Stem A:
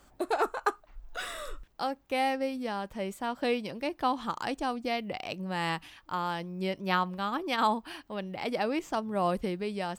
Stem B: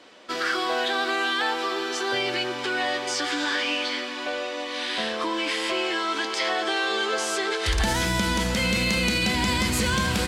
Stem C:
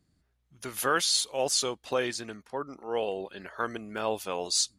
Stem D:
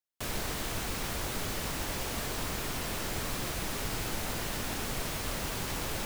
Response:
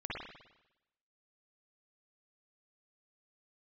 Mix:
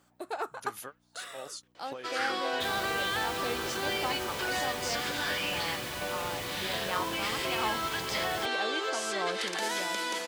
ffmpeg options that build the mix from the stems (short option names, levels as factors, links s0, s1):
-filter_complex "[0:a]aeval=exprs='val(0)+0.00282*(sin(2*PI*60*n/s)+sin(2*PI*2*60*n/s)/2+sin(2*PI*3*60*n/s)/3+sin(2*PI*4*60*n/s)/4+sin(2*PI*5*60*n/s)/5)':c=same,highpass=f=430:p=1,volume=0.531,asplit=2[s0][s1];[1:a]highpass=f=350:w=0.5412,highpass=f=350:w=1.3066,adelay=1750,volume=0.473[s2];[2:a]acompressor=threshold=0.0112:ratio=3,volume=0.596[s3];[3:a]adelay=2400,volume=0.596[s4];[s1]apad=whole_len=211162[s5];[s3][s5]sidechaingate=range=0.0224:threshold=0.00158:ratio=16:detection=peak[s6];[s0][s2][s6][s4]amix=inputs=4:normalize=0,highpass=78"